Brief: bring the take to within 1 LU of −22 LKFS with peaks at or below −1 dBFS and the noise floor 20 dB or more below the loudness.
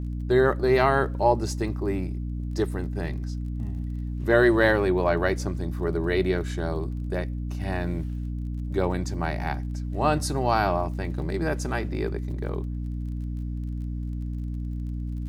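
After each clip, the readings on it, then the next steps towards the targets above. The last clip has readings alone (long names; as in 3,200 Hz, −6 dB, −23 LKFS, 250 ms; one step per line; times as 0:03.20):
crackle rate 26 per second; mains hum 60 Hz; hum harmonics up to 300 Hz; level of the hum −28 dBFS; integrated loudness −26.5 LKFS; sample peak −6.5 dBFS; target loudness −22.0 LKFS
→ click removal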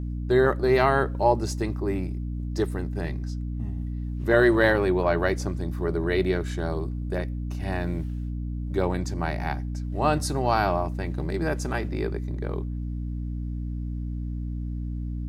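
crackle rate 0 per second; mains hum 60 Hz; hum harmonics up to 300 Hz; level of the hum −28 dBFS
→ mains-hum notches 60/120/180/240/300 Hz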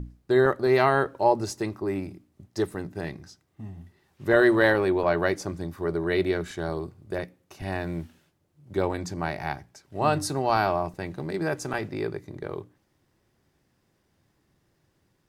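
mains hum none found; integrated loudness −26.5 LKFS; sample peak −7.0 dBFS; target loudness −22.0 LKFS
→ level +4.5 dB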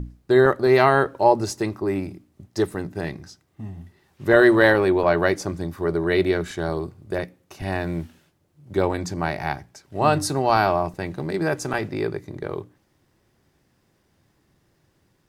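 integrated loudness −22.0 LKFS; sample peak −2.5 dBFS; background noise floor −66 dBFS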